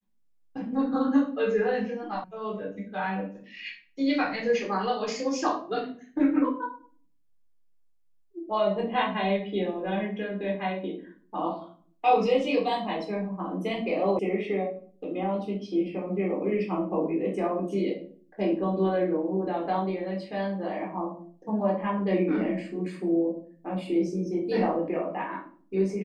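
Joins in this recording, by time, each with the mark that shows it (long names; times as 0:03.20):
0:02.24: cut off before it has died away
0:14.19: cut off before it has died away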